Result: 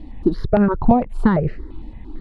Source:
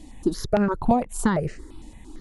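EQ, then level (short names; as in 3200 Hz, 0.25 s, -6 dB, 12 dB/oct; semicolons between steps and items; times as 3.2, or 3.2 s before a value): air absorption 450 m; low shelf 150 Hz +4.5 dB; bell 4400 Hz +6 dB 0.44 oct; +5.5 dB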